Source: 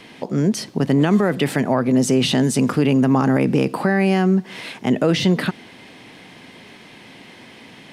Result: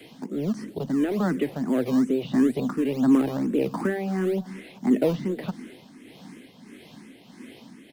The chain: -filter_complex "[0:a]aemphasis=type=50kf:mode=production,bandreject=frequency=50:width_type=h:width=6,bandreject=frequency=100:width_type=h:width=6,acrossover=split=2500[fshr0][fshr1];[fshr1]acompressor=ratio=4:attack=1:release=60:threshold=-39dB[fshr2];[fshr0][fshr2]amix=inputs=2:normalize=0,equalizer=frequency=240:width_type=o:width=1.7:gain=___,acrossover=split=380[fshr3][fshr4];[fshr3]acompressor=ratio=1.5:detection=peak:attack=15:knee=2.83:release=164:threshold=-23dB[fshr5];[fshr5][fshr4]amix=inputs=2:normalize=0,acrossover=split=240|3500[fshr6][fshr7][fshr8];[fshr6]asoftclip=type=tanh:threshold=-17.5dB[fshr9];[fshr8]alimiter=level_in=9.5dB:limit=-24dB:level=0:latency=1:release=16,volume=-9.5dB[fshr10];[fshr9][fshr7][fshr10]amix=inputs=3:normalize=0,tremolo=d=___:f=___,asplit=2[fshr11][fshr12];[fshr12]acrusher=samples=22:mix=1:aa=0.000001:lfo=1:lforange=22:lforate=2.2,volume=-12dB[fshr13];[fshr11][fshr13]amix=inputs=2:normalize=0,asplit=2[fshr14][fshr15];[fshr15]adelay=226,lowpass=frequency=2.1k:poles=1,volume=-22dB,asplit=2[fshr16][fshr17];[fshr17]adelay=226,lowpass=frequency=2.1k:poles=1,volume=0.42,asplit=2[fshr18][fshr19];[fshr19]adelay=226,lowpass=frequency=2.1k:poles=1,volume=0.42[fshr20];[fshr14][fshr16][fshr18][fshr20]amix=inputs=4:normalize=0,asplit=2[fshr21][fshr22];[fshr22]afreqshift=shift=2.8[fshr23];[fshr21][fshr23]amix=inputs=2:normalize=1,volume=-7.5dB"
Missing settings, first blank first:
12.5, 0.48, 1.6